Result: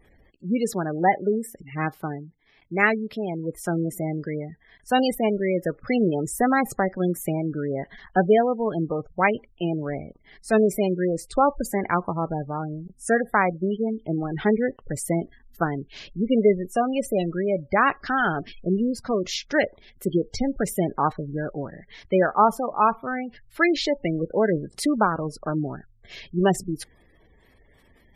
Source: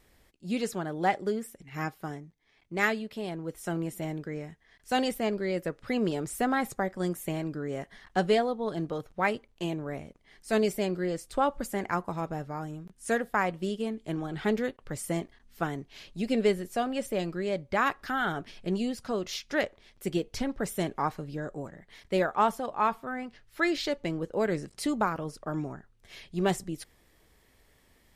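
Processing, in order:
gate on every frequency bin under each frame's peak −20 dB strong
level +7 dB

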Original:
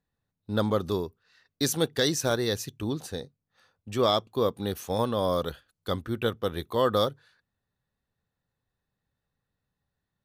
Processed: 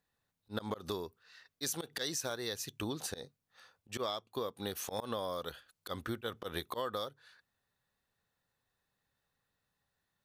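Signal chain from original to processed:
low-shelf EQ 410 Hz −11 dB
volume swells 142 ms
downward compressor 16 to 1, threshold −38 dBFS, peak gain reduction 17.5 dB
level +4.5 dB

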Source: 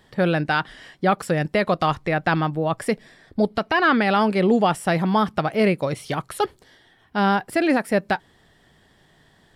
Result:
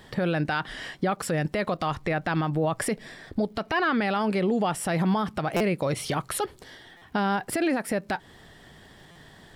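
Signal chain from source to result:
downward compressor, threshold −24 dBFS, peak gain reduction 10.5 dB
brickwall limiter −23 dBFS, peak gain reduction 10.5 dB
surface crackle 250 per second −63 dBFS
buffer that repeats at 0:05.56/0:06.97/0:09.11, samples 256, times 7
level +6.5 dB

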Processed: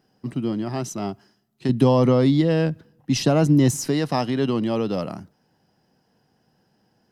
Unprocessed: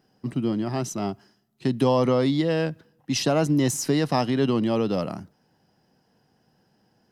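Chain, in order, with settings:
0:01.69–0:03.88: low-shelf EQ 300 Hz +8.5 dB

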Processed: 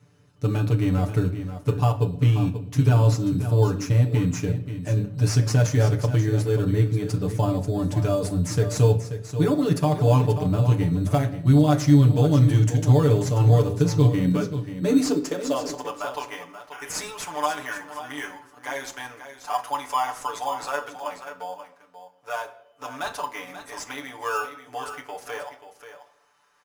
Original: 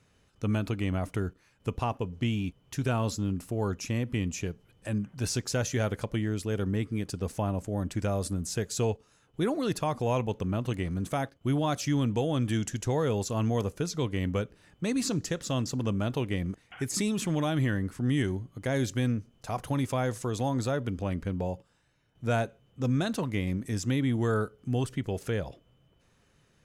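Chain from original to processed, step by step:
comb filter 6.9 ms, depth 99%
high-pass filter sweep 88 Hz → 940 Hz, 0:13.75–0:16.05
0:21.18–0:22.45: tuned comb filter 91 Hz, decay 0.21 s, harmonics all, mix 60%
in parallel at −8 dB: decimation without filtering 11×
on the sum: single-tap delay 535 ms −11 dB
on a send at −5 dB: convolution reverb, pre-delay 7 ms
on the sum: level −2.5 dB

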